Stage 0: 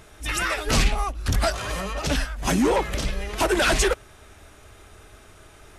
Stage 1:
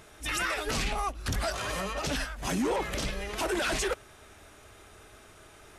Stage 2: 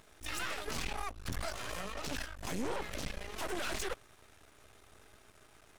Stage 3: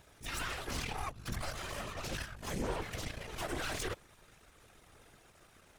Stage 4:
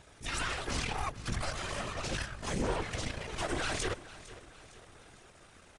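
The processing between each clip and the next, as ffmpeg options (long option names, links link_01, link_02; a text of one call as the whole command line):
ffmpeg -i in.wav -af "lowshelf=frequency=100:gain=-8,alimiter=limit=-19dB:level=0:latency=1:release=22,volume=-2.5dB" out.wav
ffmpeg -i in.wav -af "aeval=exprs='max(val(0),0)':channel_layout=same,volume=-4dB" out.wav
ffmpeg -i in.wav -af "afftfilt=real='hypot(re,im)*cos(2*PI*random(0))':imag='hypot(re,im)*sin(2*PI*random(1))':win_size=512:overlap=0.75,volume=5.5dB" out.wav
ffmpeg -i in.wav -af "aecho=1:1:456|912|1368|1824:0.141|0.0706|0.0353|0.0177,aresample=22050,aresample=44100,volume=4dB" out.wav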